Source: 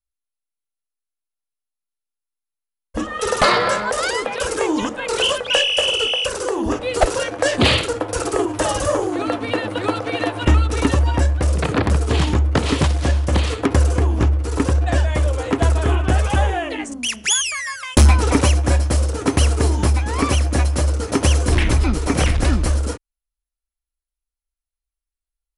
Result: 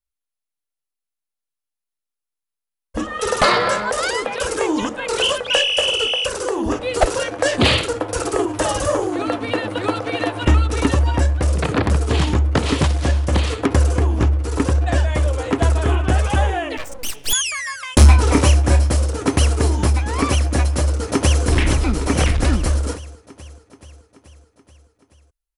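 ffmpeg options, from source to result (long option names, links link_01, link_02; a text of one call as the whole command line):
ffmpeg -i in.wav -filter_complex "[0:a]asettb=1/sr,asplit=3[link_01][link_02][link_03];[link_01]atrim=end=16.774[link_04];[link_02]atrim=start=16.77:end=17.33,asetpts=PTS-STARTPTS,afade=type=in:duration=0.004:curve=qsin,afade=type=out:start_time=0.556:duration=0.004:curve=qsin,aeval=exprs='abs(val(0))':channel_layout=same[link_05];[link_03]atrim=start=17.326[link_06];[link_04][link_05]acrossfade=duration=0.004:curve1=hsin:curve2=qsin[link_07];[link_07][link_06]acrossfade=duration=0.004:curve1=qsin:curve2=hsin,asettb=1/sr,asplit=3[link_08][link_09][link_10];[link_08]atrim=end=17.984[link_11];[link_09]atrim=start=17.98:end=18.9,asetpts=PTS-STARTPTS,afade=type=in:duration=0.004:curve=qsin,afade=type=out:start_time=0.916:duration=0.004:curve=qsin,asplit=2[link_12][link_13];[link_13]adelay=27,volume=-8dB[link_14];[link_12][link_14]amix=inputs=2:normalize=0,atrim=end_sample=40572[link_15];[link_10]atrim=start=18.896[link_16];[link_11][link_15]acrossfade=duration=0.004:curve1=hsin:curve2=qsin[link_17];[link_17][link_16]acrossfade=duration=0.004:curve1=qsin:curve2=hsin,asplit=2[link_18][link_19];[link_19]afade=type=in:start_time=20.88:duration=0.01,afade=type=out:start_time=21.43:duration=0.01,aecho=0:1:430|860|1290|1720|2150|2580|3010|3440|3870:0.375837|0.244294|0.158791|0.103214|0.0670893|0.0436081|0.0283452|0.0184244|0.0119759[link_20];[link_18][link_20]amix=inputs=2:normalize=0" out.wav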